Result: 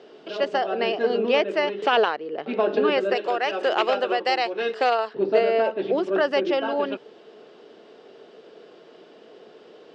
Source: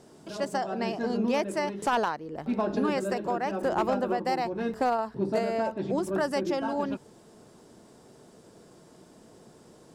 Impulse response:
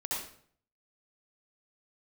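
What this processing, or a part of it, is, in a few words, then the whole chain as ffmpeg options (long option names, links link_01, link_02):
phone earpiece: -filter_complex "[0:a]asettb=1/sr,asplit=3[link_01][link_02][link_03];[link_01]atrim=end=3.154[link_04];[link_02]atrim=start=3.15:end=5.13,asetpts=PTS-STARTPTS,afade=type=in:duration=0.004:curve=qsin,afade=type=out:start_time=1.976:duration=0.004:curve=qsin,aemphasis=mode=production:type=riaa[link_05];[link_03]atrim=start=5.126[link_06];[link_04][link_05]acrossfade=duration=0.004:curve1=hsin:curve2=qsin[link_07];[link_07][link_06]acrossfade=duration=0.004:curve1=qsin:curve2=hsin,highpass=420,equalizer=frequency=430:width_type=q:width=4:gain=7,equalizer=frequency=950:width_type=q:width=4:gain=-7,equalizer=frequency=2900:width_type=q:width=4:gain=7,lowpass=frequency=4100:width=0.5412,lowpass=frequency=4100:width=1.3066,volume=7.5dB"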